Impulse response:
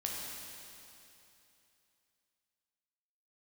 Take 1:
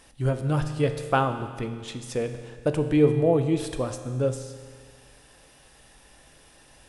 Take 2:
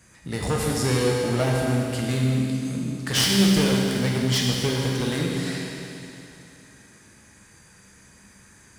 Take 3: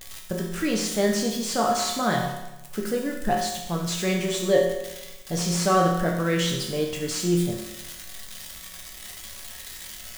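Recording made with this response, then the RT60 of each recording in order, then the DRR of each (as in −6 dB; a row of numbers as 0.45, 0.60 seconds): 2; 1.8, 2.9, 0.95 seconds; 7.5, −2.5, −1.5 decibels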